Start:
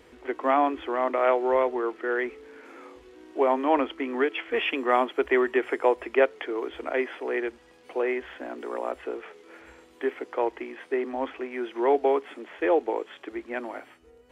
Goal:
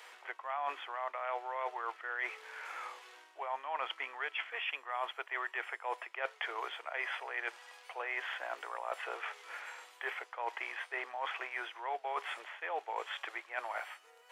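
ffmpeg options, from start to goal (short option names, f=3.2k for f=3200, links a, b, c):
-af "highpass=f=760:w=0.5412,highpass=f=760:w=1.3066,areverse,acompressor=threshold=-41dB:ratio=8,areverse,volume=6dB"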